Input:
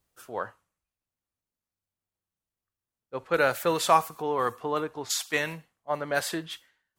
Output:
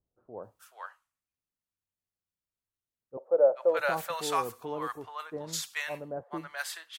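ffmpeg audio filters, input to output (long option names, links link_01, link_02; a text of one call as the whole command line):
ffmpeg -i in.wav -filter_complex "[0:a]asettb=1/sr,asplit=3[link_01][link_02][link_03];[link_01]atrim=end=3.174[link_04];[link_02]atrim=start=3.17:end=3.79,asetpts=PTS-STARTPTS,afade=type=in:duration=0.004:curve=qsin,afade=type=out:start_time=0.616:duration=0.004:curve=qsin,highpass=frequency=570:width_type=q:width=4.9[link_05];[link_03]atrim=start=3.786[link_06];[link_04][link_05]acrossfade=duration=0.004:curve1=hsin:curve2=qsin[link_07];[link_07][link_06]acrossfade=duration=0.004:curve1=qsin:curve2=hsin,acrossover=split=800[link_08][link_09];[link_09]adelay=430[link_10];[link_08][link_10]amix=inputs=2:normalize=0,volume=-5.5dB" out.wav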